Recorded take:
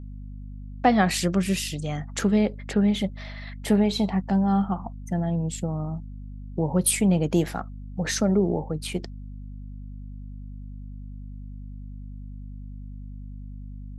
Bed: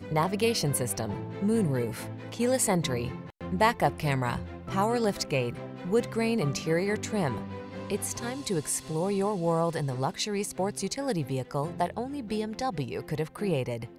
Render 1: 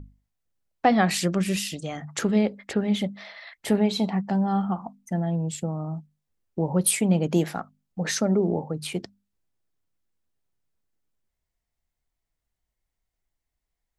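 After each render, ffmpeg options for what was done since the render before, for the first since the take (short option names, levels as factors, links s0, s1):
-af "bandreject=f=50:t=h:w=6,bandreject=f=100:t=h:w=6,bandreject=f=150:t=h:w=6,bandreject=f=200:t=h:w=6,bandreject=f=250:t=h:w=6"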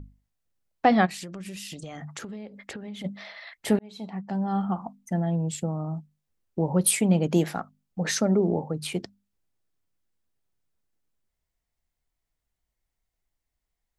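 -filter_complex "[0:a]asplit=3[s0][s1][s2];[s0]afade=t=out:st=1.05:d=0.02[s3];[s1]acompressor=threshold=0.02:ratio=16:attack=3.2:release=140:knee=1:detection=peak,afade=t=in:st=1.05:d=0.02,afade=t=out:st=3.04:d=0.02[s4];[s2]afade=t=in:st=3.04:d=0.02[s5];[s3][s4][s5]amix=inputs=3:normalize=0,asplit=2[s6][s7];[s6]atrim=end=3.79,asetpts=PTS-STARTPTS,afade=t=out:st=3.786:d=0.004:c=hsin[s8];[s7]atrim=start=3.79,asetpts=PTS-STARTPTS,afade=t=in:d=1.01[s9];[s8][s9]concat=n=2:v=0:a=1"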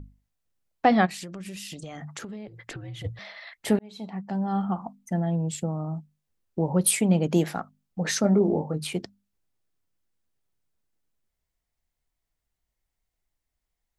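-filter_complex "[0:a]asettb=1/sr,asplit=3[s0][s1][s2];[s0]atrim=end=2.474[s3];[s1]atrim=start=2.47:end=3.19,asetpts=PTS-STARTPTS,afade=t=in:d=0.004:c=qsin,afade=t=out:st=0.716:d=0.004:c=qsin,afreqshift=-84[s4];[s2]atrim=start=3.186[s5];[s3][s4]acrossfade=d=0.004:c1=hsin:c2=qsin[s6];[s6][s5]acrossfade=d=0.004:c1=qsin:c2=hsin,asettb=1/sr,asplit=3[s7][s8][s9];[s7]atrim=end=8.224[s10];[s8]atrim=start=8.22:end=8.84,asetpts=PTS-STARTPTS,afade=t=in:d=0.004:c=qsin,afade=t=out:st=0.616:d=0.004:c=qsin,asplit=2[s11][s12];[s12]adelay=20,volume=0.531[s13];[s11][s13]amix=inputs=2:normalize=0,atrim=end_sample=27342[s14];[s9]atrim=start=8.836[s15];[s10][s14]acrossfade=d=0.004:c1=hsin:c2=qsin[s16];[s16][s15]acrossfade=d=0.004:c1=qsin:c2=hsin"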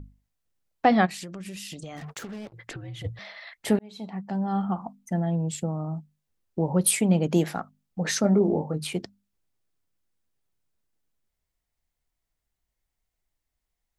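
-filter_complex "[0:a]asplit=3[s0][s1][s2];[s0]afade=t=out:st=1.96:d=0.02[s3];[s1]acrusher=bits=6:mix=0:aa=0.5,afade=t=in:st=1.96:d=0.02,afade=t=out:st=2.52:d=0.02[s4];[s2]afade=t=in:st=2.52:d=0.02[s5];[s3][s4][s5]amix=inputs=3:normalize=0"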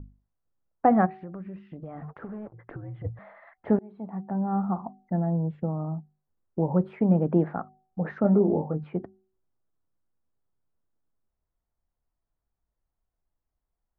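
-af "lowpass=f=1400:w=0.5412,lowpass=f=1400:w=1.3066,bandreject=f=376.9:t=h:w=4,bandreject=f=753.8:t=h:w=4"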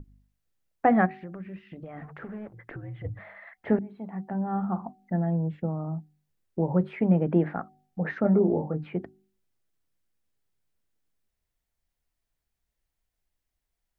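-af "highshelf=f=1500:t=q:w=1.5:g=7,bandreject=f=50:t=h:w=6,bandreject=f=100:t=h:w=6,bandreject=f=150:t=h:w=6,bandreject=f=200:t=h:w=6,bandreject=f=250:t=h:w=6,bandreject=f=300:t=h:w=6"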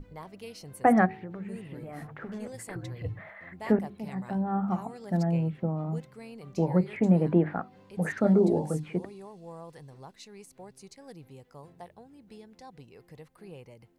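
-filter_complex "[1:a]volume=0.126[s0];[0:a][s0]amix=inputs=2:normalize=0"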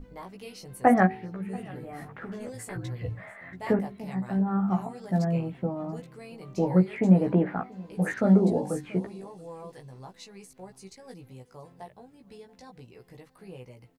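-filter_complex "[0:a]asplit=2[s0][s1];[s1]adelay=16,volume=0.708[s2];[s0][s2]amix=inputs=2:normalize=0,aecho=1:1:683:0.0668"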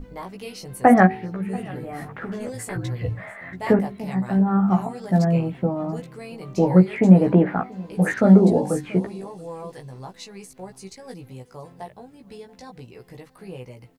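-af "volume=2.24,alimiter=limit=0.891:level=0:latency=1"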